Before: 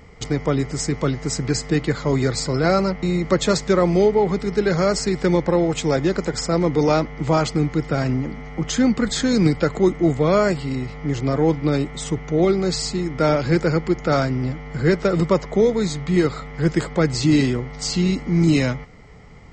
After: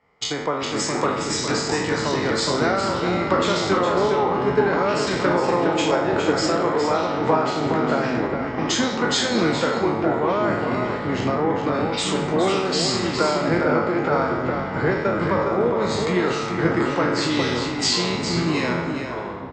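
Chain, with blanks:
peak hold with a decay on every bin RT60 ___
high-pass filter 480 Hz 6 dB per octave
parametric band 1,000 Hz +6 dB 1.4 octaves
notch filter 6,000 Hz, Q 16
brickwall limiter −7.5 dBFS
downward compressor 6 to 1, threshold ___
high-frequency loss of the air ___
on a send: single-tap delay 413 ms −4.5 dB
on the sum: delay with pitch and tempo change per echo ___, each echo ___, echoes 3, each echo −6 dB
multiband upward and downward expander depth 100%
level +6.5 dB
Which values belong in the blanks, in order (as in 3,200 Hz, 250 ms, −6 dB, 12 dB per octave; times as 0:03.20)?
0.87 s, −26 dBFS, 85 metres, 320 ms, −5 semitones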